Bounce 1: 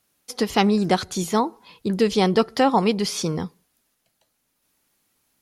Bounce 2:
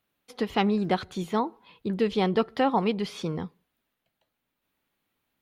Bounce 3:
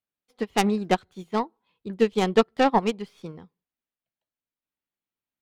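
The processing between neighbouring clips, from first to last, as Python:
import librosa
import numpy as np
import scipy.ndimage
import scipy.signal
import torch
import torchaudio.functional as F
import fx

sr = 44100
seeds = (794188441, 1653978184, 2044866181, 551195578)

y1 = fx.band_shelf(x, sr, hz=7800.0, db=-13.0, octaves=1.7)
y1 = F.gain(torch.from_numpy(y1), -5.5).numpy()
y2 = fx.tracing_dist(y1, sr, depth_ms=0.18)
y2 = fx.upward_expand(y2, sr, threshold_db=-35.0, expansion=2.5)
y2 = F.gain(torch.from_numpy(y2), 7.0).numpy()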